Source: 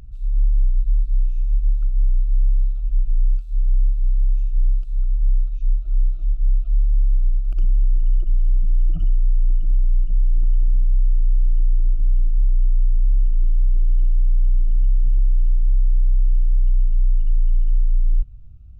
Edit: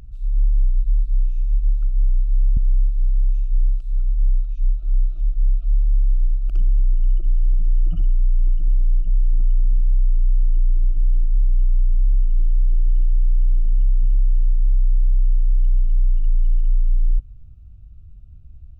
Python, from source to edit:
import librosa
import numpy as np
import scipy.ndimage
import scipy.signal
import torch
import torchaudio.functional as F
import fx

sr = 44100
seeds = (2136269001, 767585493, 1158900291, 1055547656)

y = fx.edit(x, sr, fx.cut(start_s=2.57, length_s=1.03), tone=tone)